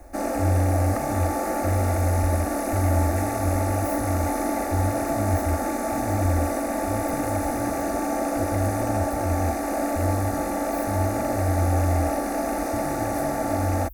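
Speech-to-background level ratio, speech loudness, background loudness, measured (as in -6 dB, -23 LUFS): -2.0 dB, -28.5 LUFS, -26.5 LUFS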